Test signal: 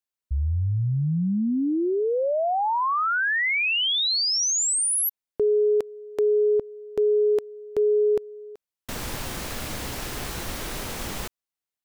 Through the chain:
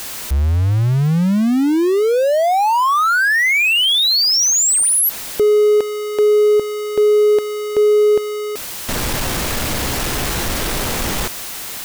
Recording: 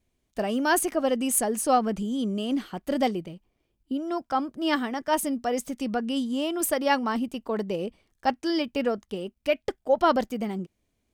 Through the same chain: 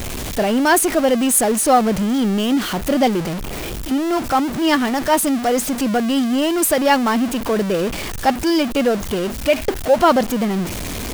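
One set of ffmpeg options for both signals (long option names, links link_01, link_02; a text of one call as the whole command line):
ffmpeg -i in.wav -af "aeval=exprs='val(0)+0.5*0.0473*sgn(val(0))':channel_layout=same,volume=6.5dB" out.wav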